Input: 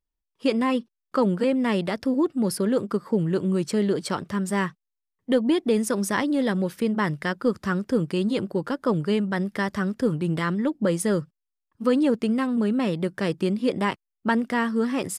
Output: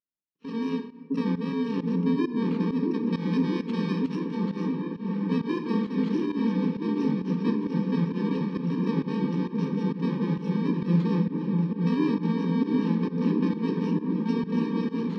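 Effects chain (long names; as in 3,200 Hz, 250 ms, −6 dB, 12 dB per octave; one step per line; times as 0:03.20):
samples in bit-reversed order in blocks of 64 samples
0:03.06–0:04.35: tilt shelving filter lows −6 dB, about 1,200 Hz
flanger 0.19 Hz, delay 8.7 ms, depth 7.4 ms, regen −89%
loudspeaker in its box 160–3,400 Hz, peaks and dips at 160 Hz +9 dB, 290 Hz +8 dB, 730 Hz −7 dB, 1,500 Hz −7 dB, 2,600 Hz −7 dB
echo whose low-pass opens from repeat to repeat 655 ms, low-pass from 400 Hz, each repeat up 1 octave, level 0 dB
on a send at −6.5 dB: convolution reverb RT60 1.1 s, pre-delay 5 ms
on the sum: fake sidechain pumping 133 BPM, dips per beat 1, −15 dB, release 141 ms
level −2 dB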